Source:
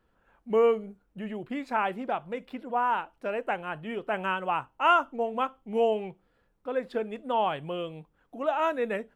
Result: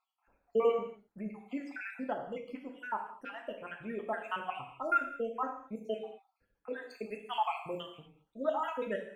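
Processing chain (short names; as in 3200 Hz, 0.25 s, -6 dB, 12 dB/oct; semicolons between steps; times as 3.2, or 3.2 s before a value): random spectral dropouts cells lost 70%; 6.9–7.83 high shelf 2700 Hz +11 dB; non-linear reverb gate 0.26 s falling, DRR 2.5 dB; gain -5 dB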